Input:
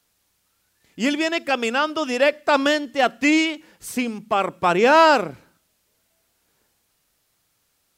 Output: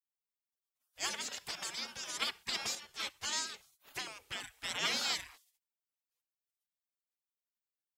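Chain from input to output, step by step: spectral gate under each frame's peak -25 dB weak; 2.75–3.33 s: three-phase chorus; trim -1.5 dB

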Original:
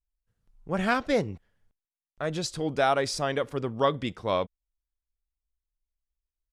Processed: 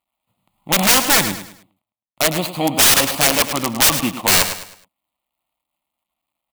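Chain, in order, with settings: median filter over 25 samples; high-pass 310 Hz 12 dB/octave; static phaser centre 1.6 kHz, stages 6; integer overflow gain 30.5 dB; treble shelf 4 kHz +7 dB; on a send: feedback delay 105 ms, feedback 35%, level -12 dB; on the sum: loudness maximiser +23 dB; trim -1 dB

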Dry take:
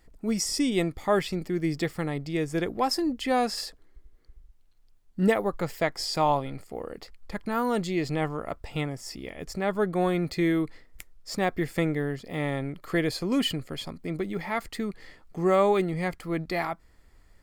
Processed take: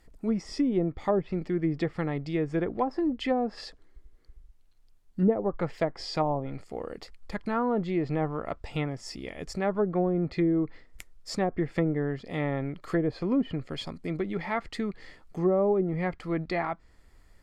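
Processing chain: low-pass that closes with the level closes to 560 Hz, closed at -20 dBFS

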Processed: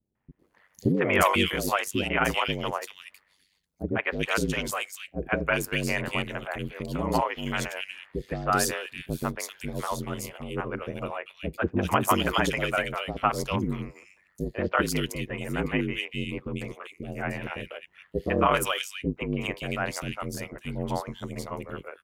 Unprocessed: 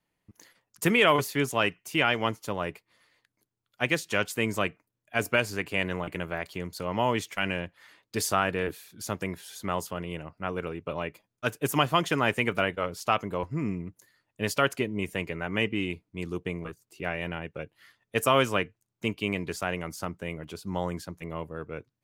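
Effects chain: ring modulator 48 Hz; three bands offset in time lows, mids, highs 150/390 ms, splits 510/2400 Hz; trim +5.5 dB

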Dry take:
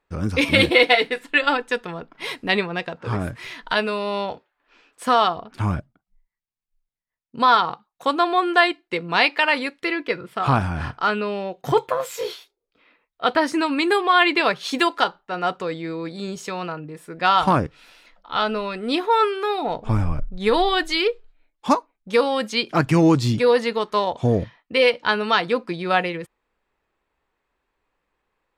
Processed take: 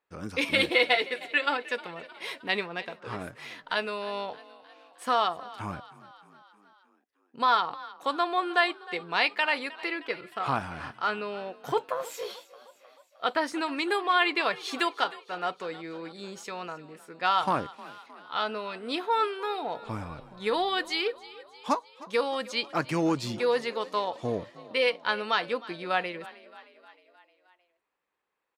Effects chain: high-pass 360 Hz 6 dB/octave; on a send: frequency-shifting echo 310 ms, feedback 60%, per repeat +34 Hz, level -19 dB; on the sum: trim -7 dB

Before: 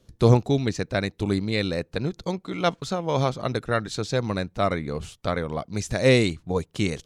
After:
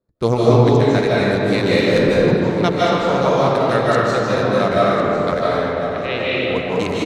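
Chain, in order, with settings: local Wiener filter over 15 samples; gate -43 dBFS, range -15 dB; bass shelf 170 Hz -12 dB; 1.66–2.17 s: waveshaping leveller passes 2; 5.41–6.35 s: four-pole ladder low-pass 3.4 kHz, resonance 65%; feedback delay 1051 ms, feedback 31%, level -13.5 dB; algorithmic reverb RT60 3.2 s, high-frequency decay 0.5×, pre-delay 115 ms, DRR -8 dB; trim +3 dB

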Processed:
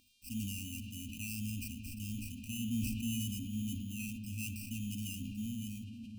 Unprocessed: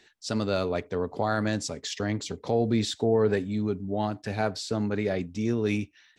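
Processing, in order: fade out at the end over 1.09 s; in parallel at -3.5 dB: hard clipper -29.5 dBFS, distortion -5 dB; on the sum: sample-and-hold 13×; static phaser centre 800 Hz, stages 8; mains buzz 400 Hz, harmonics 33, -50 dBFS -8 dB/octave; brick-wall FIR band-stop 270–2400 Hz; on a send at -8 dB: reverberation RT60 7.1 s, pre-delay 26 ms; on the sum: decay stretcher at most 27 dB/s; trim -7 dB

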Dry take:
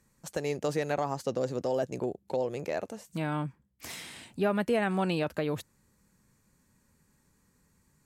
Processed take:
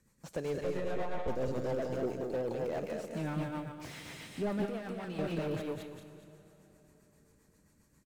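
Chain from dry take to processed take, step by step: block-companded coder 7-bit; 0.60–1.28 s: monotone LPC vocoder at 8 kHz 180 Hz; delay 179 ms -11 dB; saturation -26.5 dBFS, distortion -12 dB; feedback delay 209 ms, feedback 27%, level -3.5 dB; rotary cabinet horn 7.5 Hz; 4.65–5.19 s: compression 3:1, threshold -40 dBFS, peak gain reduction 10.5 dB; plate-style reverb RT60 4.2 s, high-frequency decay 0.7×, DRR 14 dB; slew-rate limiter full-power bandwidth 16 Hz

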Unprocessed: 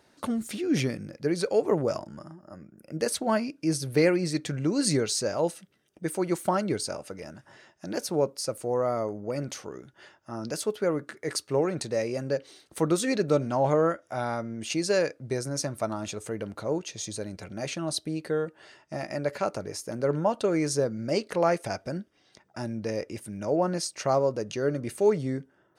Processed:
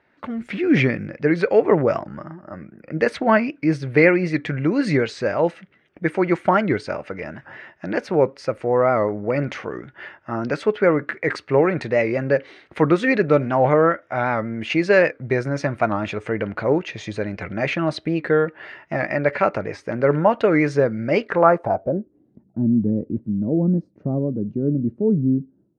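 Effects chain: level rider gain up to 13 dB; low-pass sweep 2.1 kHz -> 240 Hz, 21.25–22.32 s; warped record 78 rpm, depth 100 cents; trim -3 dB

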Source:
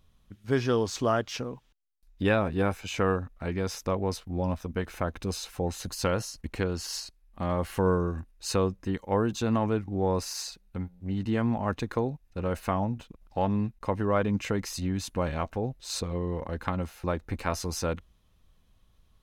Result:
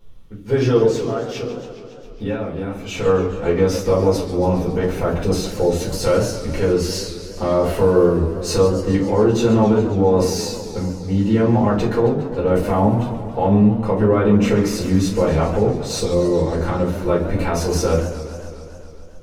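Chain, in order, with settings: peaking EQ 380 Hz +7.5 dB 1.4 oct; 0.83–3.06 s: compression 5:1, threshold -33 dBFS, peak gain reduction 15.5 dB; peak limiter -16.5 dBFS, peak gain reduction 7.5 dB; simulated room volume 170 m³, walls furnished, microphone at 4.4 m; modulated delay 137 ms, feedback 75%, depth 203 cents, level -12.5 dB

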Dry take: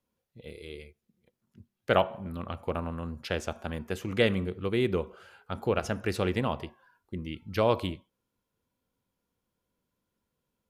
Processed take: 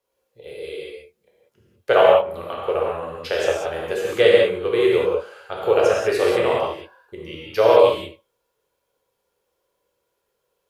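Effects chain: resonant low shelf 330 Hz -10 dB, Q 3; gated-style reverb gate 220 ms flat, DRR -4.5 dB; trim +3 dB

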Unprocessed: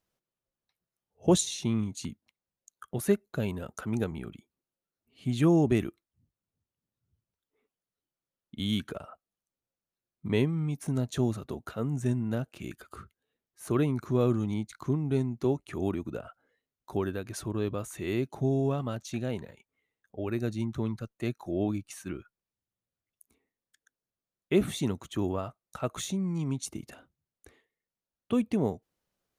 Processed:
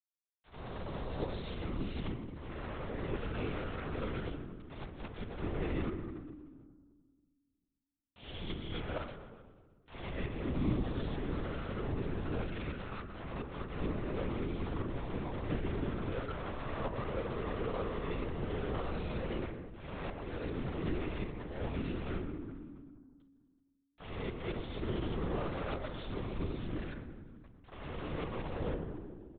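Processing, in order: reverse spectral sustain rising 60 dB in 1.61 s; de-esser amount 45%; time-frequency box 16.29–18.12 s, 330–1400 Hz +12 dB; slow attack 364 ms; reverse; compression 10:1, threshold -36 dBFS, peak gain reduction 20 dB; reverse; small samples zeroed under -38.5 dBFS; distance through air 53 m; on a send: feedback delay 123 ms, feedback 59%, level -16 dB; on the sum: FDN reverb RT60 1.5 s, low-frequency decay 1.45×, high-frequency decay 0.35×, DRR 3.5 dB; LPC vocoder at 8 kHz whisper; trim +1.5 dB

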